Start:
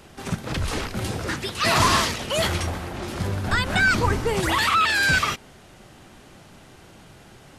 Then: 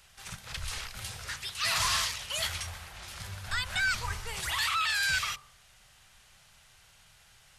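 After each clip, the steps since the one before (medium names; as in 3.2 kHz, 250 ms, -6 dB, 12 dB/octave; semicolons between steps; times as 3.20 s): amplifier tone stack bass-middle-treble 10-0-10; de-hum 45.24 Hz, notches 28; trim -3.5 dB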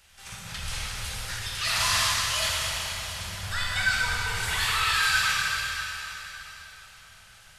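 band-stop 1.1 kHz, Q 23; plate-style reverb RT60 3.9 s, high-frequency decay 0.95×, DRR -5.5 dB; trim -1 dB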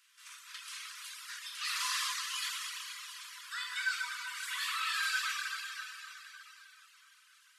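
reverb removal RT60 0.81 s; brick-wall FIR high-pass 960 Hz; trim -8 dB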